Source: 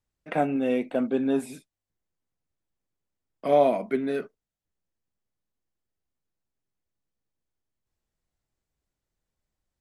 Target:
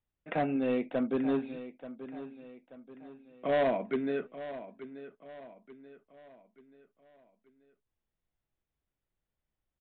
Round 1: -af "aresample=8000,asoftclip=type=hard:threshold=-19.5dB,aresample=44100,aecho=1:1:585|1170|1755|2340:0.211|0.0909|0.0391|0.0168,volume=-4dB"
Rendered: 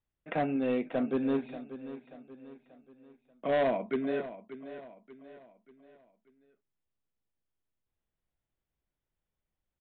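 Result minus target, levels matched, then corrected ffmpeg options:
echo 0.298 s early
-af "aresample=8000,asoftclip=type=hard:threshold=-19.5dB,aresample=44100,aecho=1:1:883|1766|2649|3532:0.211|0.0909|0.0391|0.0168,volume=-4dB"

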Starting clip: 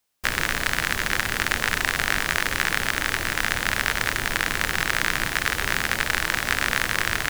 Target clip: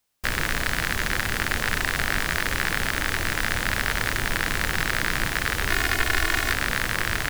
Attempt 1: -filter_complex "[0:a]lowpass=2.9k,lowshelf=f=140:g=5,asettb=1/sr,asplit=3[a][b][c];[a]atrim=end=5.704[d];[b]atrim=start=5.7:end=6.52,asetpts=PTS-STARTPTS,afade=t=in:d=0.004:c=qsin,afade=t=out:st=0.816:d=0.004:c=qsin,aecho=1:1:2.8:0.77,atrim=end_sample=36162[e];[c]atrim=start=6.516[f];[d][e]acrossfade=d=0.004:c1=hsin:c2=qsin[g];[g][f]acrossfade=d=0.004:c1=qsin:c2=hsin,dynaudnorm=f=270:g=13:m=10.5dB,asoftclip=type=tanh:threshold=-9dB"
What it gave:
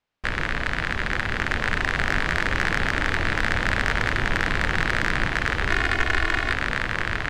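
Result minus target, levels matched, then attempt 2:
4000 Hz band -3.0 dB
-filter_complex "[0:a]lowshelf=f=140:g=5,asettb=1/sr,asplit=3[a][b][c];[a]atrim=end=5.704[d];[b]atrim=start=5.7:end=6.52,asetpts=PTS-STARTPTS,afade=t=in:d=0.004:c=qsin,afade=t=out:st=0.816:d=0.004:c=qsin,aecho=1:1:2.8:0.77,atrim=end_sample=36162[e];[c]atrim=start=6.516[f];[d][e]acrossfade=d=0.004:c1=hsin:c2=qsin[g];[g][f]acrossfade=d=0.004:c1=qsin:c2=hsin,dynaudnorm=f=270:g=13:m=10.5dB,asoftclip=type=tanh:threshold=-9dB"

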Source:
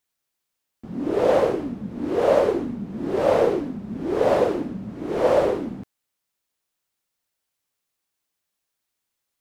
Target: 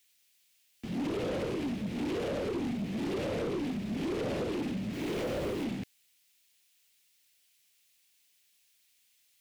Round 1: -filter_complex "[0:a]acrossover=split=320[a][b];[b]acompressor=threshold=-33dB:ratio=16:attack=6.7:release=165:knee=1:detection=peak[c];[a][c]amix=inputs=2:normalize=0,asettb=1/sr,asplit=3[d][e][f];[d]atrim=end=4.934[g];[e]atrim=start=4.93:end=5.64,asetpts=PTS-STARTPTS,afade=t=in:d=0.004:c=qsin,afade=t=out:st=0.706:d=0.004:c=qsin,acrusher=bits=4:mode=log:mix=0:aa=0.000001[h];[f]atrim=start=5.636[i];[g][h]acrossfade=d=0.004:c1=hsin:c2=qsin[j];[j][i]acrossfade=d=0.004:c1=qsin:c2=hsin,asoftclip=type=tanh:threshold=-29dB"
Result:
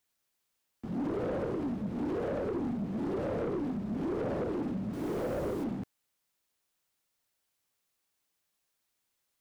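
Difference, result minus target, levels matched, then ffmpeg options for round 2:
4000 Hz band -12.5 dB
-filter_complex "[0:a]acrossover=split=320[a][b];[b]acompressor=threshold=-33dB:ratio=16:attack=6.7:release=165:knee=1:detection=peak,highshelf=f=1.7k:t=q:w=1.5:g=11.5[c];[a][c]amix=inputs=2:normalize=0,asettb=1/sr,asplit=3[d][e][f];[d]atrim=end=4.934[g];[e]atrim=start=4.93:end=5.64,asetpts=PTS-STARTPTS,afade=t=in:d=0.004:c=qsin,afade=t=out:st=0.706:d=0.004:c=qsin,acrusher=bits=4:mode=log:mix=0:aa=0.000001[h];[f]atrim=start=5.636[i];[g][h]acrossfade=d=0.004:c1=hsin:c2=qsin[j];[j][i]acrossfade=d=0.004:c1=qsin:c2=hsin,asoftclip=type=tanh:threshold=-29dB"

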